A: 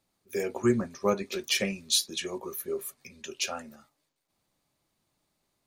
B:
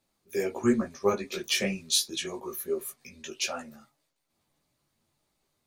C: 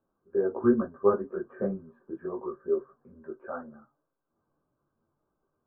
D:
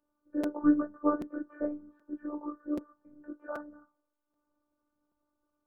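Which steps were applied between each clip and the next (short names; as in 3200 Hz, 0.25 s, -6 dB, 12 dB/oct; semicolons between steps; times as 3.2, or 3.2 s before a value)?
chorus voices 4, 0.82 Hz, delay 17 ms, depth 4.8 ms; gain +3.5 dB
rippled Chebyshev low-pass 1600 Hz, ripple 6 dB; gain +3.5 dB
robotiser 295 Hz; crackling interface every 0.78 s, samples 256, repeat, from 0.43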